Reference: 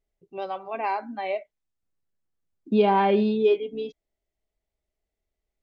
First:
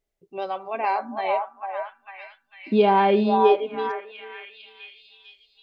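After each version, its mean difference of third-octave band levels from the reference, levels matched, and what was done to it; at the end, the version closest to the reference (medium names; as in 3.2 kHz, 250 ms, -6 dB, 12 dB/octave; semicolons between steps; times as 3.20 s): 3.0 dB: bass shelf 180 Hz -6 dB; on a send: repeats whose band climbs or falls 449 ms, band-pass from 870 Hz, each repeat 0.7 oct, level -2 dB; on the sum: trim +3 dB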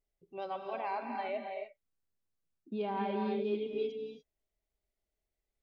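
5.5 dB: reverse; compression 6:1, threshold -27 dBFS, peak gain reduction 12 dB; reverse; gated-style reverb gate 320 ms rising, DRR 3.5 dB; trim -6 dB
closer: first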